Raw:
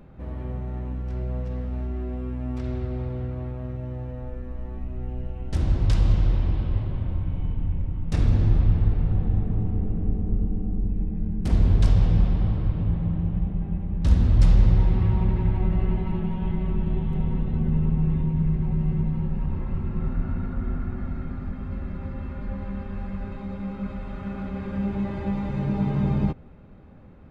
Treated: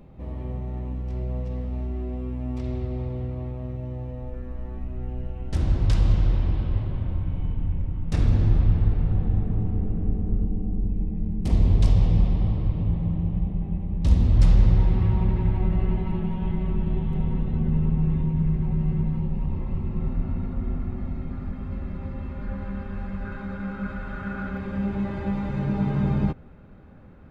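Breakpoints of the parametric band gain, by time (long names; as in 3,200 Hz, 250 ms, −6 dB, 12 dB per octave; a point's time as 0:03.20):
parametric band 1,500 Hz 0.39 octaves
−10.5 dB
from 0:04.34 0 dB
from 0:10.44 −10.5 dB
from 0:14.35 −1.5 dB
from 0:19.19 −11 dB
from 0:21.32 −3.5 dB
from 0:22.40 +4.5 dB
from 0:23.25 +14.5 dB
from 0:24.57 +4.5 dB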